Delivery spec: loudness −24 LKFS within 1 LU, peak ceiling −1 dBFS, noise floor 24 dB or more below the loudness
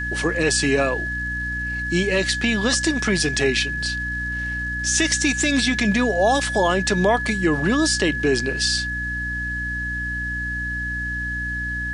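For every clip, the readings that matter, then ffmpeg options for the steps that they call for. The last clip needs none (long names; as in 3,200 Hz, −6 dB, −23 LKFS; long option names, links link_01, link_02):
mains hum 60 Hz; hum harmonics up to 300 Hz; level of the hum −28 dBFS; interfering tone 1,700 Hz; level of the tone −25 dBFS; integrated loudness −21.0 LKFS; sample peak −5.0 dBFS; target loudness −24.0 LKFS
→ -af "bandreject=frequency=60:width_type=h:width=6,bandreject=frequency=120:width_type=h:width=6,bandreject=frequency=180:width_type=h:width=6,bandreject=frequency=240:width_type=h:width=6,bandreject=frequency=300:width_type=h:width=6"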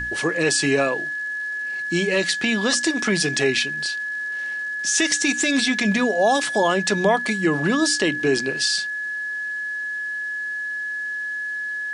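mains hum none found; interfering tone 1,700 Hz; level of the tone −25 dBFS
→ -af "bandreject=frequency=1700:width=30"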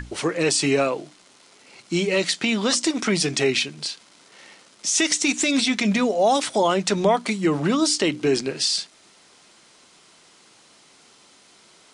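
interfering tone none found; integrated loudness −21.5 LKFS; sample peak −6.5 dBFS; target loudness −24.0 LKFS
→ -af "volume=-2.5dB"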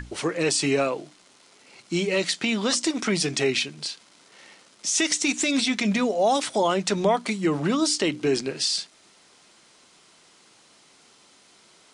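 integrated loudness −24.0 LKFS; sample peak −9.0 dBFS; background noise floor −57 dBFS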